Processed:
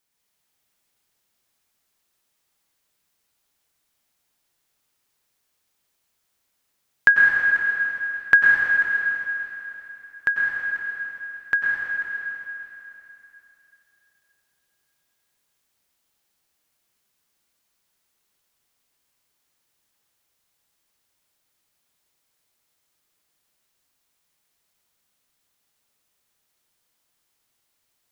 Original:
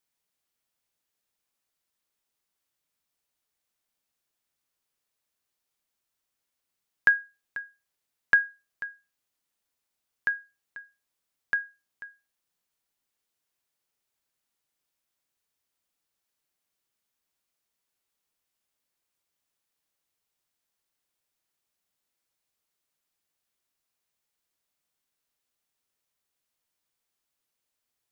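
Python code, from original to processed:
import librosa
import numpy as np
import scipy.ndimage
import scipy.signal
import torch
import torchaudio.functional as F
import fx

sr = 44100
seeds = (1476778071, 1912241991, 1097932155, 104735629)

y = fx.rev_plate(x, sr, seeds[0], rt60_s=3.3, hf_ratio=1.0, predelay_ms=85, drr_db=-2.5)
y = y * librosa.db_to_amplitude(5.5)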